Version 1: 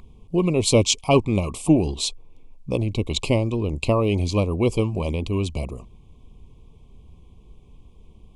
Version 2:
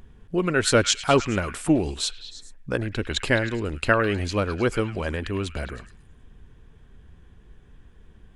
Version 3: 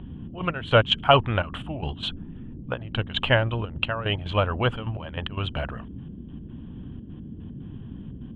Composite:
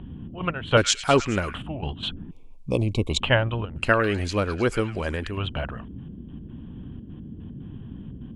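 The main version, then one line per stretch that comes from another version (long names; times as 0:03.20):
3
0:00.77–0:01.54: punch in from 2
0:02.31–0:03.20: punch in from 1
0:03.83–0:05.34: punch in from 2, crossfade 0.16 s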